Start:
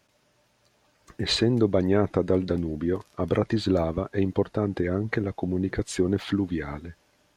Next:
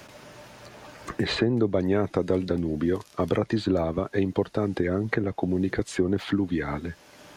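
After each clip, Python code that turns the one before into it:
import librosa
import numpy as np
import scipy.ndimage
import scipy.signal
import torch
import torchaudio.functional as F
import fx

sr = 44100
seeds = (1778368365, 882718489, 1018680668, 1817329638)

y = fx.low_shelf(x, sr, hz=83.0, db=-5.0)
y = fx.band_squash(y, sr, depth_pct=70)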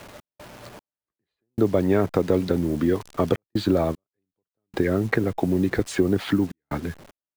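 y = fx.delta_hold(x, sr, step_db=-43.5)
y = fx.step_gate(y, sr, bpm=76, pattern='x.xx....xxxxxxxx', floor_db=-60.0, edge_ms=4.5)
y = y * 10.0 ** (3.5 / 20.0)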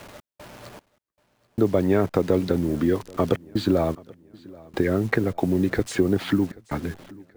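y = fx.echo_feedback(x, sr, ms=782, feedback_pct=41, wet_db=-23.0)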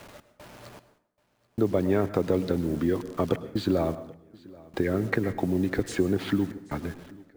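y = fx.rev_plate(x, sr, seeds[0], rt60_s=0.62, hf_ratio=0.7, predelay_ms=95, drr_db=14.0)
y = y * 10.0 ** (-4.0 / 20.0)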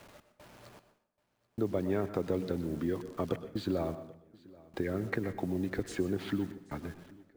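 y = fx.echo_feedback(x, sr, ms=123, feedback_pct=29, wet_db=-17.0)
y = y * 10.0 ** (-7.5 / 20.0)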